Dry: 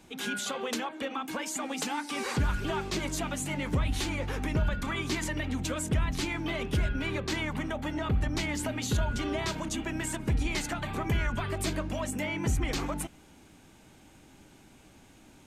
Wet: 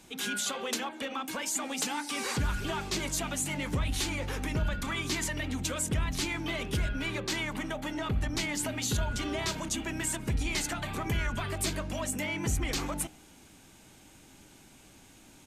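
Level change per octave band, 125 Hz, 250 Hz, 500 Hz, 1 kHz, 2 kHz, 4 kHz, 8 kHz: -2.5, -2.5, -2.5, -1.5, 0.0, +2.0, +4.0 dB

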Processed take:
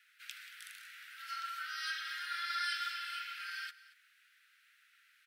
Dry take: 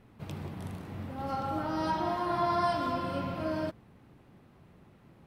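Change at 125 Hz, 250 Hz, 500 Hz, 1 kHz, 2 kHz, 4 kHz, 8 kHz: under -40 dB, under -40 dB, under -40 dB, -11.5 dB, +4.5 dB, +5.0 dB, n/a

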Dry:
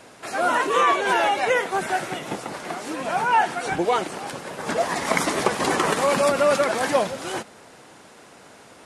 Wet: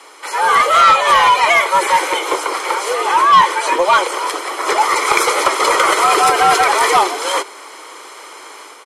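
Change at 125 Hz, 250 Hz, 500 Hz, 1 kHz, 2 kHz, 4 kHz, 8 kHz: n/a, -0.5 dB, +3.5 dB, +11.5 dB, +9.0 dB, +12.0 dB, +10.5 dB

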